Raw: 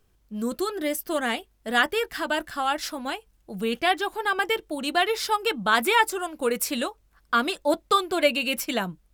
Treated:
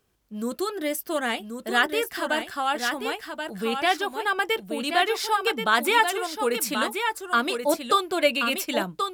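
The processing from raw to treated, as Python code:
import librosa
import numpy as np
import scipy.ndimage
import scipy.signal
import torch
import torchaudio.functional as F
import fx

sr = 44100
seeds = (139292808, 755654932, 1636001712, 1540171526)

y = fx.highpass(x, sr, hz=160.0, slope=6)
y = y + 10.0 ** (-6.5 / 20.0) * np.pad(y, (int(1081 * sr / 1000.0), 0))[:len(y)]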